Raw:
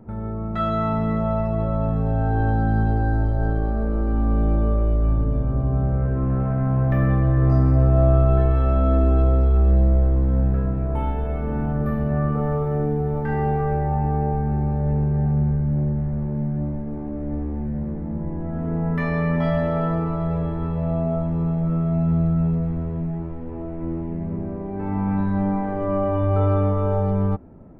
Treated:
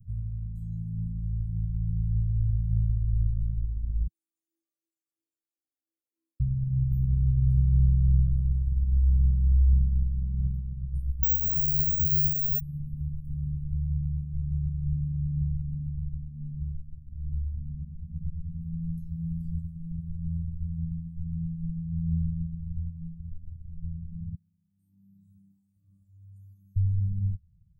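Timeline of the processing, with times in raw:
4.07–6.4 Chebyshev high-pass 330 Hz, order 8
11.23–12.6 careless resampling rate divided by 2×, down filtered, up zero stuff
24.35–26.76 HPF 480 Hz
whole clip: inverse Chebyshev band-stop 380–2600 Hz, stop band 70 dB; reverb removal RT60 1.9 s; bell 170 Hz +13.5 dB 0.96 oct

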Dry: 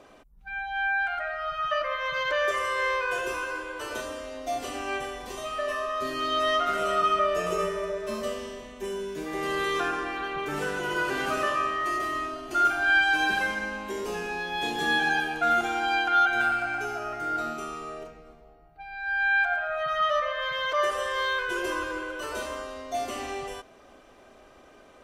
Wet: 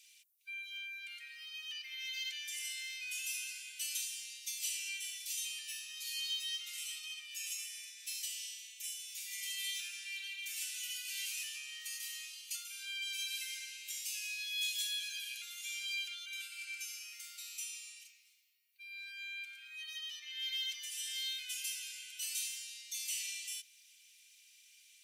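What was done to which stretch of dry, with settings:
9.3–9.71 comb 6 ms, depth 67%
whole clip: compressor, threshold -28 dBFS; elliptic high-pass 2300 Hz, stop band 60 dB; differentiator; gain +8 dB

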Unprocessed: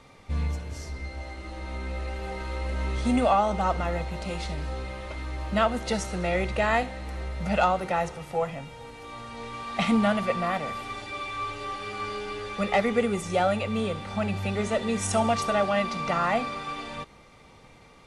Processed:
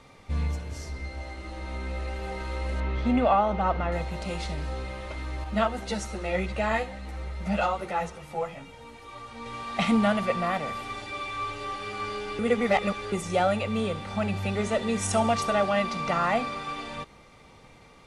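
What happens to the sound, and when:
2.8–3.92 LPF 3100 Hz
5.44–9.46 ensemble effect
12.39–13.12 reverse

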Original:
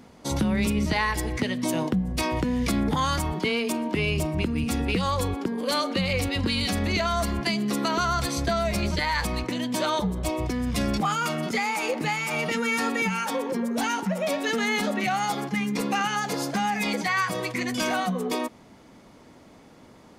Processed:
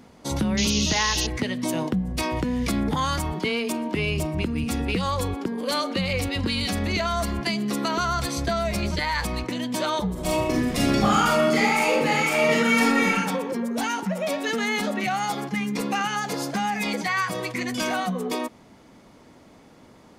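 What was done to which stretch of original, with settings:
0.57–1.27 painted sound noise 2500–6800 Hz -27 dBFS
10.12–13.13 reverb throw, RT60 0.91 s, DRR -4.5 dB

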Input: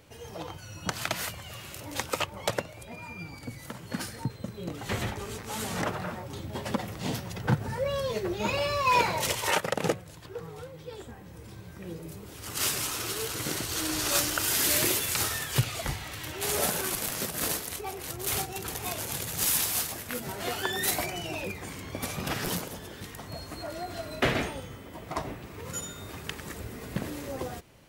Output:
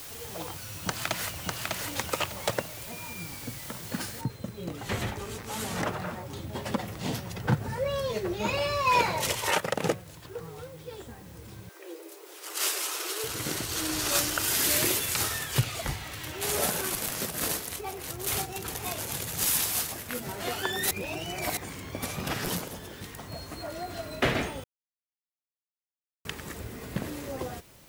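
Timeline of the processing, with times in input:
0.62–1.73 echo throw 0.6 s, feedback 25%, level -2.5 dB
4.21 noise floor step -43 dB -58 dB
11.69–13.24 steep high-pass 320 Hz 96 dB/oct
20.91–21.57 reverse
24.64–26.25 mute

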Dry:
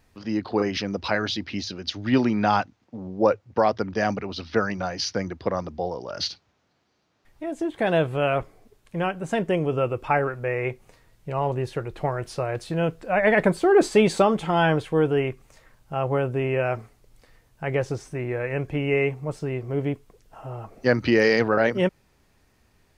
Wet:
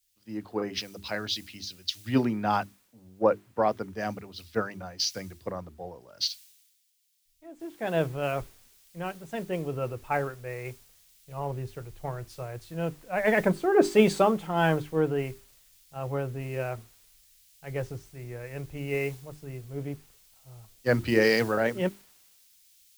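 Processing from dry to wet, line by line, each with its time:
7.6 noise floor step -51 dB -45 dB
whole clip: low shelf 150 Hz +5.5 dB; notches 50/100/150/200/250/300/350/400 Hz; three-band expander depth 100%; gain -8 dB

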